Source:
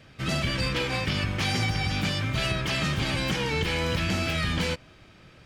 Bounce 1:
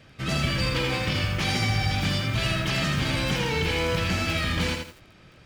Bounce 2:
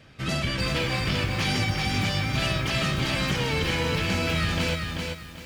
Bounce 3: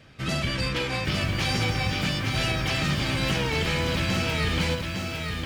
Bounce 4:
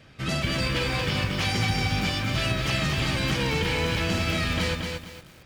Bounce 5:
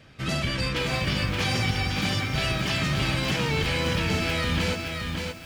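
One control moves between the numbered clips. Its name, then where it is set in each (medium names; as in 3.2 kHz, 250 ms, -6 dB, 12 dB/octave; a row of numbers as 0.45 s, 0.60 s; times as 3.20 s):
bit-crushed delay, time: 83 ms, 389 ms, 857 ms, 229 ms, 573 ms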